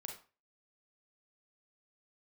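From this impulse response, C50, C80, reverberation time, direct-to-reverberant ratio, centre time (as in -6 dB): 6.5 dB, 12.0 dB, 0.35 s, 1.5 dB, 24 ms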